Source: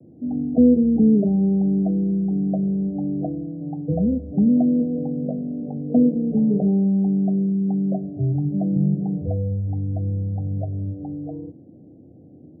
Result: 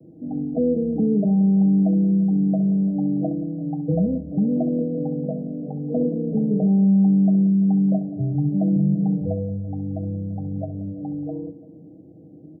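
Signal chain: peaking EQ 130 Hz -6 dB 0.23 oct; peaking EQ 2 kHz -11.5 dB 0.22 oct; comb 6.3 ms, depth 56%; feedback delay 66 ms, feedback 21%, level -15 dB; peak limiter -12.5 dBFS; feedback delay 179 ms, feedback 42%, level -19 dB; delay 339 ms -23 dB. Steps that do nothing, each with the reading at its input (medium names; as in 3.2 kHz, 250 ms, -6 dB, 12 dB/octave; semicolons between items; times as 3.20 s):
peaking EQ 2 kHz: input has nothing above 680 Hz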